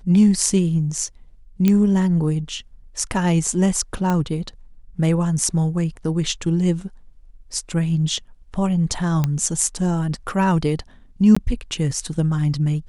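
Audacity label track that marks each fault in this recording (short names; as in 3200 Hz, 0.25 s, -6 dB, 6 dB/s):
1.680000	1.680000	pop -6 dBFS
4.100000	4.100000	pop -10 dBFS
9.240000	9.240000	pop -8 dBFS
11.350000	11.370000	gap 15 ms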